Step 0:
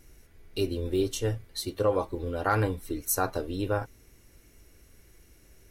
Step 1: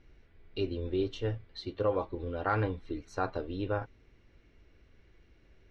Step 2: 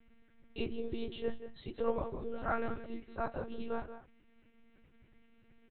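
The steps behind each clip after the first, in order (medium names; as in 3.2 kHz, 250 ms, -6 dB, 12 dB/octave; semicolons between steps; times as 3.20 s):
low-pass 3.9 kHz 24 dB/octave; trim -4 dB
chorus 0.62 Hz, delay 18.5 ms, depth 4.6 ms; delay 180 ms -11.5 dB; monotone LPC vocoder at 8 kHz 230 Hz; trim -1 dB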